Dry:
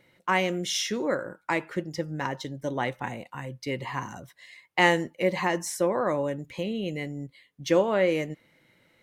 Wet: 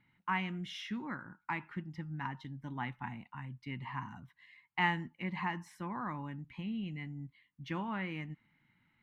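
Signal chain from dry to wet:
drawn EQ curve 240 Hz 0 dB, 540 Hz −26 dB, 860 Hz −2 dB, 2,800 Hz −5 dB, 6,600 Hz −23 dB, 11,000 Hz −21 dB
level −5.5 dB

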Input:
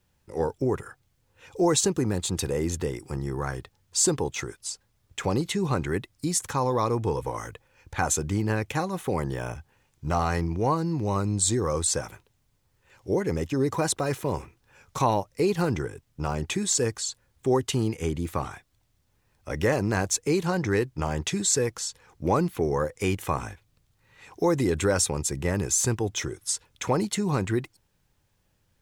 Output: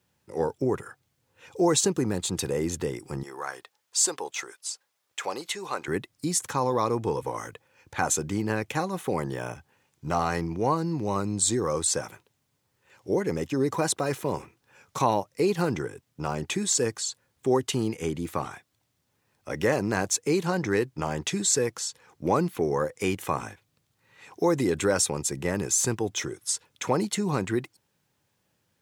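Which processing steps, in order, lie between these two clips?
high-pass filter 120 Hz 12 dB per octave, from 0:03.23 610 Hz, from 0:05.88 140 Hz

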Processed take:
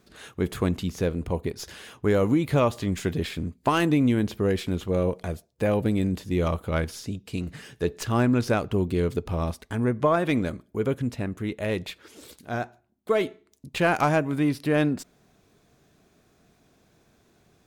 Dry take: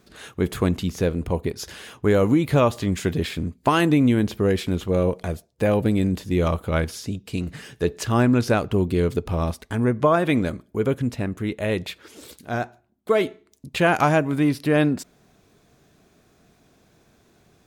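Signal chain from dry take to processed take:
stylus tracing distortion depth 0.026 ms
level −3.5 dB

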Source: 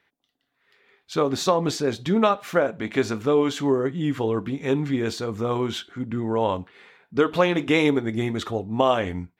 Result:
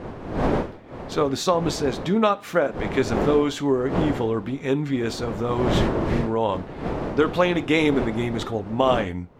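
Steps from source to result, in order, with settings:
wind on the microphone 530 Hz −28 dBFS
0:02.03–0:02.73: high-pass filter 93 Hz
0:05.72–0:06.21: healed spectral selection 250–1,600 Hz both

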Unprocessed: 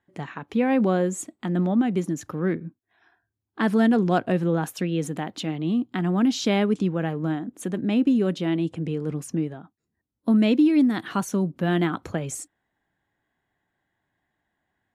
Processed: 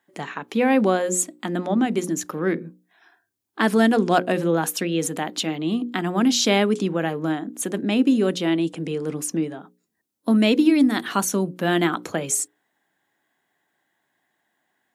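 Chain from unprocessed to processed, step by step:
high-pass filter 230 Hz 12 dB per octave
high-shelf EQ 4,500 Hz +9 dB
mains-hum notches 60/120/180/240/300/360/420/480/540 Hz
level +4.5 dB

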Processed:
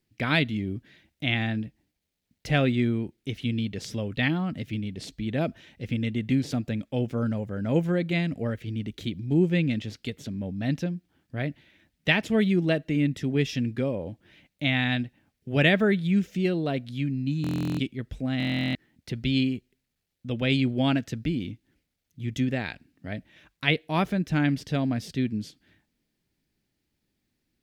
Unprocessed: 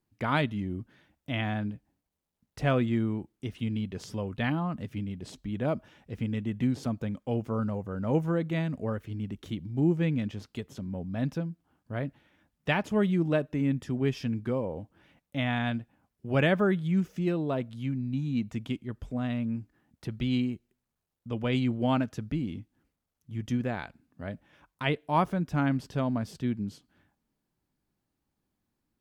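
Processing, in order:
octave-band graphic EQ 1,000/2,000/4,000 Hz −10/+6/+5 dB
change of speed 1.05×
buffer that repeats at 0:17.42/0:18.38, samples 1,024, times 15
level +3.5 dB

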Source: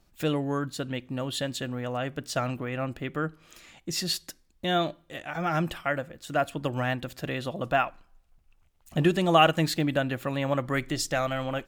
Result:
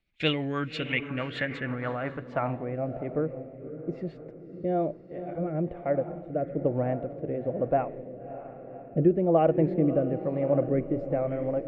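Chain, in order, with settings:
noise gate −48 dBFS, range −14 dB
parametric band 2,200 Hz +15 dB 0.42 octaves
feedback delay with all-pass diffusion 579 ms, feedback 49%, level −10 dB
low-pass filter sweep 3,500 Hz → 510 Hz, 0:00.54–0:03.30
rotating-speaker cabinet horn 6.3 Hz, later 1.1 Hz, at 0:01.66

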